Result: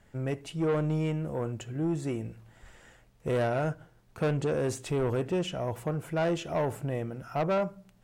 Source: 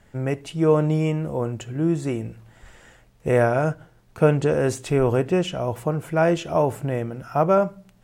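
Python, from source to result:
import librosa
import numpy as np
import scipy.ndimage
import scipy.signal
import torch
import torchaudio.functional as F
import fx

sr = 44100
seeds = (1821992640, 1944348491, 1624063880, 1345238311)

y = 10.0 ** (-17.0 / 20.0) * np.tanh(x / 10.0 ** (-17.0 / 20.0))
y = F.gain(torch.from_numpy(y), -5.5).numpy()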